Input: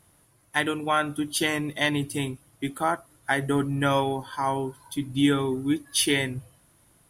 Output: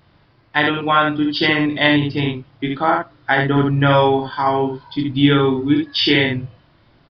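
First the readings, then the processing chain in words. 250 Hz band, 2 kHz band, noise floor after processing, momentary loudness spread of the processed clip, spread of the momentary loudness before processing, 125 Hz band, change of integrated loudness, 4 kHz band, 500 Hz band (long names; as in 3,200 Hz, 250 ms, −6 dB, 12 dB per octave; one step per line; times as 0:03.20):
+9.0 dB, +9.5 dB, −56 dBFS, 9 LU, 9 LU, +10.5 dB, +9.0 dB, +9.5 dB, +10.0 dB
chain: ambience of single reflections 27 ms −6 dB, 71 ms −3.5 dB
downsampling to 11,025 Hz
level +7 dB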